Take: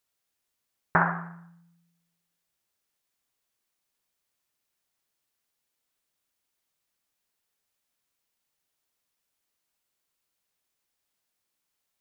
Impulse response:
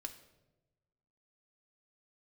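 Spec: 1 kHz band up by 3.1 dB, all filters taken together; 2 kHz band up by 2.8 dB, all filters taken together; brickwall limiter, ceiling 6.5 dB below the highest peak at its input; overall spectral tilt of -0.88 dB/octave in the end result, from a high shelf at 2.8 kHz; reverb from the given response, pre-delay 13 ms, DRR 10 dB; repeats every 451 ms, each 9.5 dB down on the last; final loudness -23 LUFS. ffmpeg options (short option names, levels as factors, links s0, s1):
-filter_complex "[0:a]equalizer=f=1000:t=o:g=3.5,equalizer=f=2000:t=o:g=4.5,highshelf=f=2800:g=-6.5,alimiter=limit=0.251:level=0:latency=1,aecho=1:1:451|902|1353|1804:0.335|0.111|0.0365|0.012,asplit=2[s0][s1];[1:a]atrim=start_sample=2205,adelay=13[s2];[s1][s2]afir=irnorm=-1:irlink=0,volume=0.473[s3];[s0][s3]amix=inputs=2:normalize=0,volume=2.11"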